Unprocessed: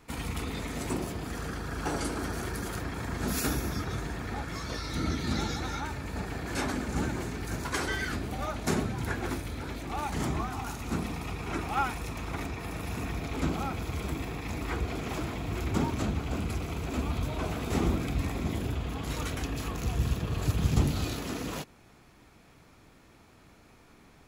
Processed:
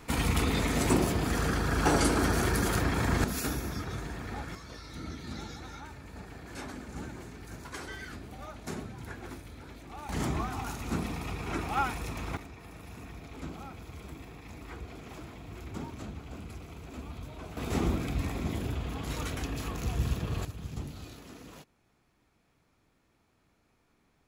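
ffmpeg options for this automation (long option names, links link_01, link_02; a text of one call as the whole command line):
ffmpeg -i in.wav -af "asetnsamples=nb_out_samples=441:pad=0,asendcmd='3.24 volume volume -3dB;4.55 volume volume -10dB;10.09 volume volume -0.5dB;12.37 volume volume -11dB;17.57 volume volume -1.5dB;20.45 volume volume -13.5dB',volume=7dB" out.wav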